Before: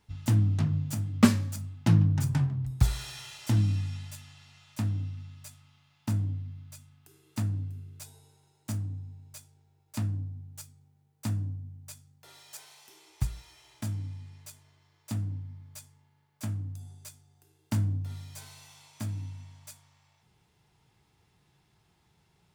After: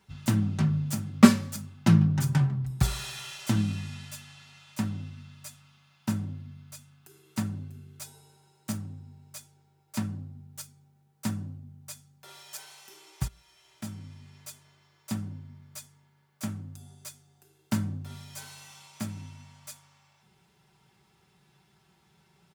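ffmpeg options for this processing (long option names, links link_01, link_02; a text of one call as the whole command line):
ffmpeg -i in.wav -filter_complex "[0:a]asplit=2[link_01][link_02];[link_01]atrim=end=13.28,asetpts=PTS-STARTPTS,afade=type=out:start_time=13.276:duration=0.004:curve=hsin:silence=0.16788[link_03];[link_02]atrim=start=13.28,asetpts=PTS-STARTPTS,afade=type=in:duration=1.11:silence=0.16788[link_04];[link_03][link_04]concat=n=2:v=0:a=1,highpass=74,equalizer=frequency=1400:width=2.8:gain=3,aecho=1:1:5.2:0.6,volume=2.5dB" out.wav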